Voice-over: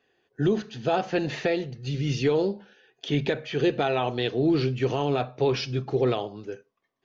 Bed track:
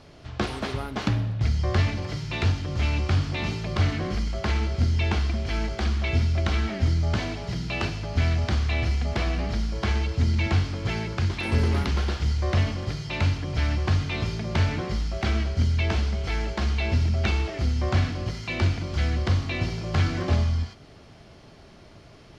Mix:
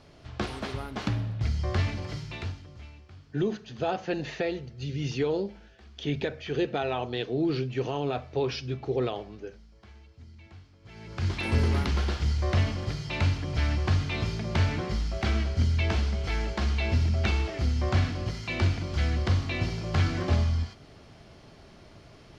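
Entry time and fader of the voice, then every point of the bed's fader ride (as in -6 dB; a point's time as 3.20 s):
2.95 s, -4.5 dB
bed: 2.18 s -4.5 dB
3.06 s -27 dB
10.79 s -27 dB
11.28 s -2 dB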